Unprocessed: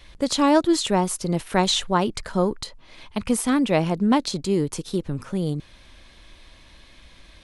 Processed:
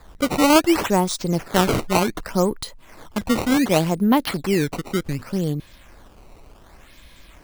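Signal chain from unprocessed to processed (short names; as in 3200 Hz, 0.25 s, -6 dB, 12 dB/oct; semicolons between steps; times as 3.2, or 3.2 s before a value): decimation with a swept rate 15×, swing 160% 0.67 Hz; gain +2 dB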